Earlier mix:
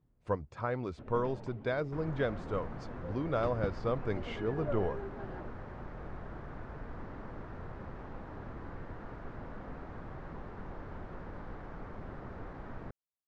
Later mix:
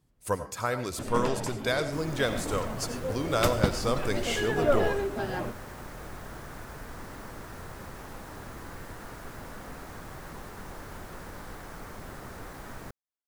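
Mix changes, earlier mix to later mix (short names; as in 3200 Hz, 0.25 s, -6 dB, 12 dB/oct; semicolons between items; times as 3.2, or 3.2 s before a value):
speech: send on; first sound +11.0 dB; master: remove tape spacing loss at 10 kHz 42 dB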